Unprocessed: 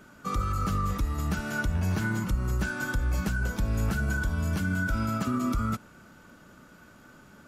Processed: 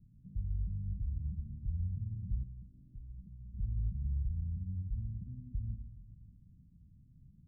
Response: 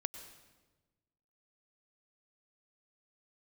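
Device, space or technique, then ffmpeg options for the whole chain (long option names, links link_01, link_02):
club heard from the street: -filter_complex "[0:a]alimiter=level_in=5.5dB:limit=-24dB:level=0:latency=1:release=286,volume=-5.5dB,lowpass=frequency=140:width=0.5412,lowpass=frequency=140:width=1.3066[link_01];[1:a]atrim=start_sample=2205[link_02];[link_01][link_02]afir=irnorm=-1:irlink=0,asettb=1/sr,asplit=3[link_03][link_04][link_05];[link_03]atrim=end=2.434[link_06];[link_04]atrim=start=2.43:end=3.54,asetpts=PTS-STARTPTS,afade=type=in:duration=0.004:curve=qsin,afade=type=out:start_time=1.106:duration=0.004:curve=qsin,equalizer=frequency=66:width_type=o:width=2.8:gain=-14.5[link_07];[link_05]atrim=start=3.536[link_08];[link_06][link_07]acrossfade=duration=0.004:curve1=hsin:curve2=qsin[link_09];[link_09][link_08]acrossfade=duration=0.004:curve1=qsin:curve2=hsin,volume=3dB"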